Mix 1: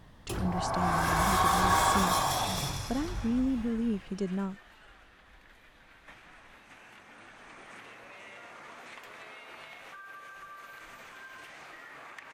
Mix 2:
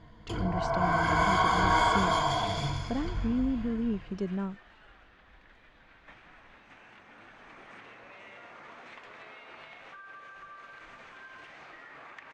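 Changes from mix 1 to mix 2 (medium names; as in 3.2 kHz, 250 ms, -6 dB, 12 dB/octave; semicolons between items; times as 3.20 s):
first sound: add rippled EQ curve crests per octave 1.8, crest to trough 15 dB; master: add distance through air 130 m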